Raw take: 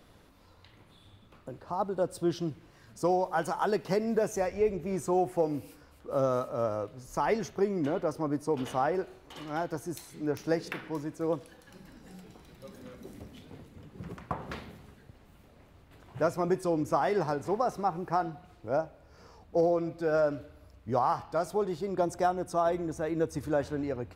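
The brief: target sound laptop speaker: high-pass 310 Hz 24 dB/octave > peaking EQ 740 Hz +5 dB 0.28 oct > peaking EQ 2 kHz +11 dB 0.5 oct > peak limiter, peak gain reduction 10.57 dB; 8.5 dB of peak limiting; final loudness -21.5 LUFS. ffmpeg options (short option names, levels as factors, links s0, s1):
-af "alimiter=limit=0.0794:level=0:latency=1,highpass=f=310:w=0.5412,highpass=f=310:w=1.3066,equalizer=f=740:t=o:w=0.28:g=5,equalizer=f=2000:t=o:w=0.5:g=11,volume=5.31,alimiter=limit=0.282:level=0:latency=1"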